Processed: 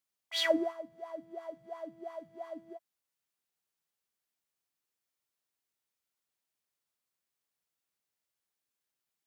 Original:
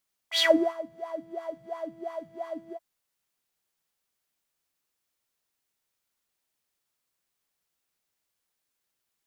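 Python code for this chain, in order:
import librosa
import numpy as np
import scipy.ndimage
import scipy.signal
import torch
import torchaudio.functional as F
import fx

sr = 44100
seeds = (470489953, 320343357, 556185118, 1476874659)

y = scipy.signal.sosfilt(scipy.signal.butter(2, 60.0, 'highpass', fs=sr, output='sos'), x)
y = y * librosa.db_to_amplitude(-7.0)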